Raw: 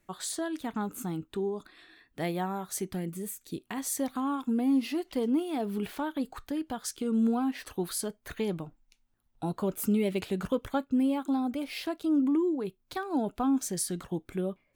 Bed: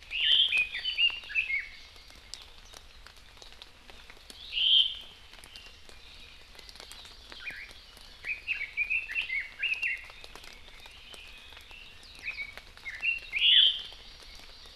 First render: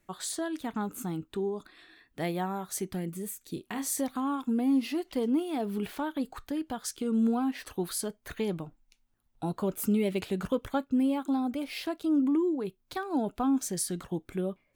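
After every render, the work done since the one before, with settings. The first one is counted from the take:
0:03.54–0:04.01: double-tracking delay 29 ms −6.5 dB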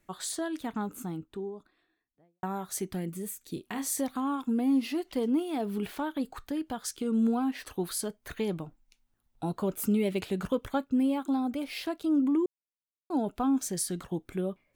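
0:00.54–0:02.43: fade out and dull
0:12.46–0:13.10: silence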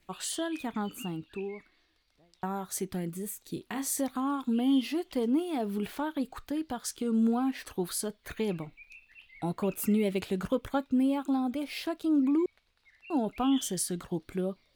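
mix in bed −22 dB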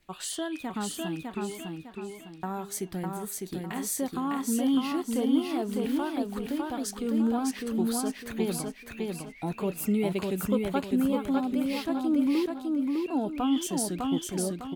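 repeating echo 604 ms, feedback 37%, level −3 dB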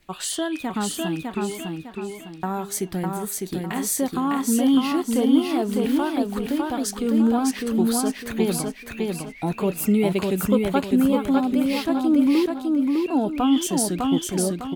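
level +7 dB

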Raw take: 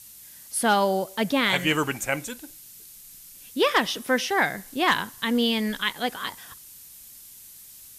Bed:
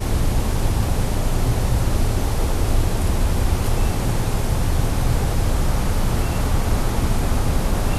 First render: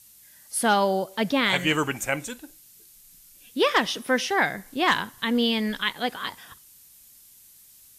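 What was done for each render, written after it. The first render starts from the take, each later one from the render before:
noise reduction from a noise print 6 dB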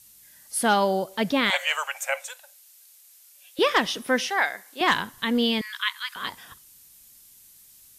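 0:01.50–0:03.59: Chebyshev high-pass filter 540 Hz, order 6
0:04.30–0:04.81: high-pass filter 620 Hz
0:05.61–0:06.16: Butterworth high-pass 980 Hz 96 dB per octave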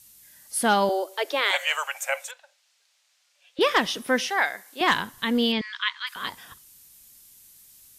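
0:00.89–0:01.56: Butterworth high-pass 310 Hz 96 dB per octave
0:02.31–0:03.61: high-frequency loss of the air 140 metres
0:05.52–0:06.07: low-pass filter 5,600 Hz 24 dB per octave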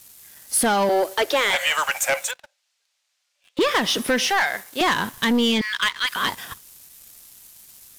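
downward compressor, threshold −24 dBFS, peak gain reduction 8.5 dB
leveller curve on the samples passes 3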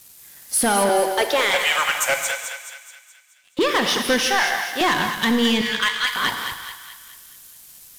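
feedback echo with a high-pass in the loop 213 ms, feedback 51%, high-pass 810 Hz, level −7 dB
reverb whose tail is shaped and stops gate 210 ms flat, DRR 6.5 dB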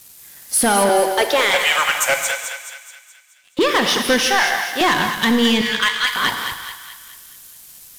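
level +3 dB

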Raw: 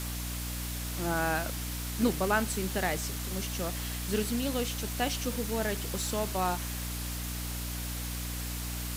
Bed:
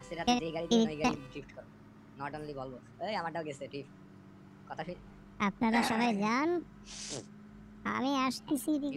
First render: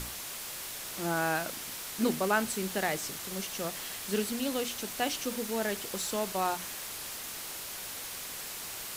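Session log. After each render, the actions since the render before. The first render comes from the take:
mains-hum notches 60/120/180/240/300 Hz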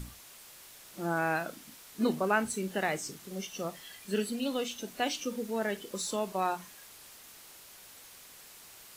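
noise reduction from a noise print 12 dB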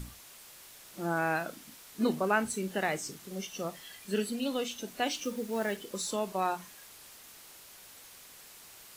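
0:05.11–0:05.87: one scale factor per block 5 bits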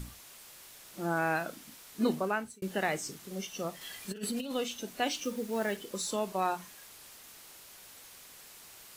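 0:02.14–0:02.62: fade out
0:03.81–0:04.51: compressor whose output falls as the input rises −35 dBFS, ratio −0.5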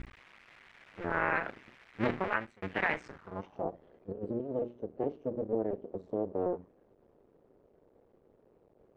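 sub-harmonics by changed cycles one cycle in 2, muted
low-pass filter sweep 2,100 Hz → 460 Hz, 0:02.99–0:03.86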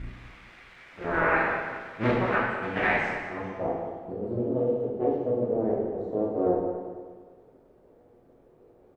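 repeating echo 209 ms, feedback 42%, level −12 dB
dense smooth reverb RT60 1.2 s, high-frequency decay 0.8×, pre-delay 0 ms, DRR −6 dB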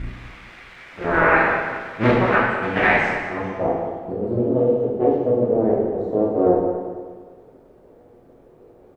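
level +8 dB

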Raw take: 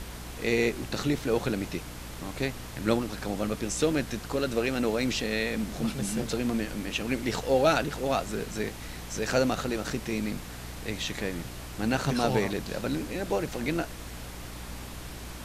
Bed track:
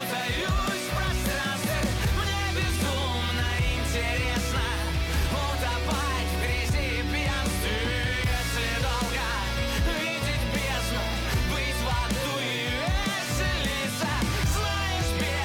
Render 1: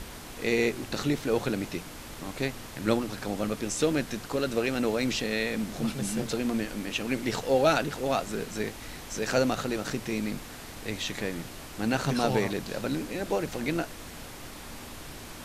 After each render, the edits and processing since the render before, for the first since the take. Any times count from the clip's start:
hum removal 60 Hz, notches 3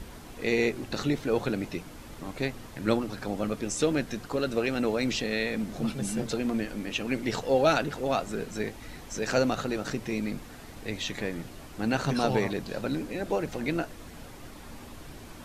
broadband denoise 7 dB, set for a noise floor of −43 dBFS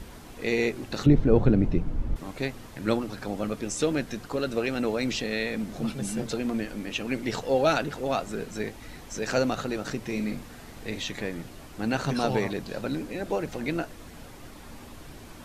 0:01.06–0:02.16: spectral tilt −4.5 dB per octave
0:10.03–0:11.05: double-tracking delay 42 ms −8 dB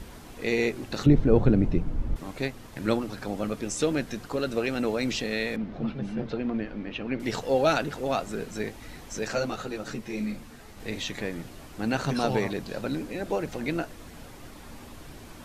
0:02.43–0:02.87: transient designer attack +3 dB, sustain −2 dB
0:05.56–0:07.20: high-frequency loss of the air 300 metres
0:09.28–0:10.80: string-ensemble chorus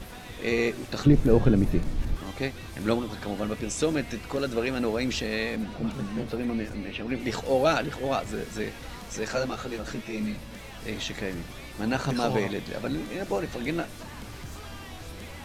mix in bed track −16.5 dB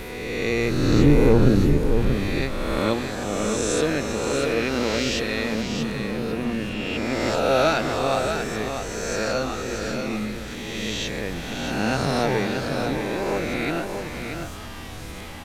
peak hold with a rise ahead of every peak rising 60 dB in 1.97 s
on a send: single-tap delay 634 ms −6.5 dB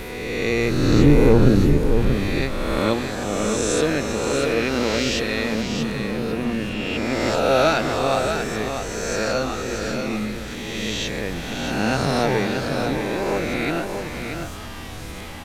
level +2 dB

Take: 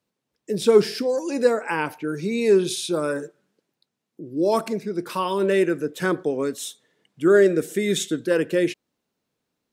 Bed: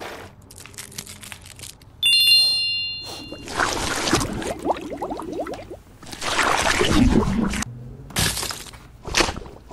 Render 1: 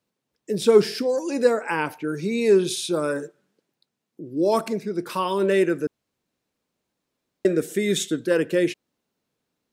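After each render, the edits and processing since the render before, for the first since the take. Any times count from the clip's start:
0:05.87–0:07.45: fill with room tone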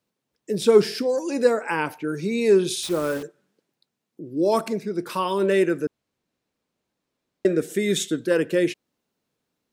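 0:02.83–0:03.23: hold until the input has moved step −33.5 dBFS
0:05.85–0:07.70: high-shelf EQ 8,200 Hz −6 dB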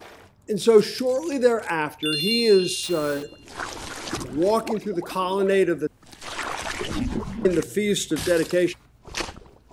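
mix in bed −10.5 dB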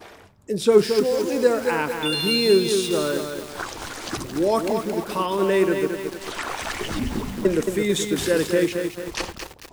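feedback echo at a low word length 222 ms, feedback 55%, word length 6 bits, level −5.5 dB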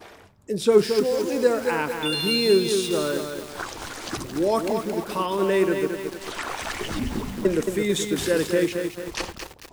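level −1.5 dB

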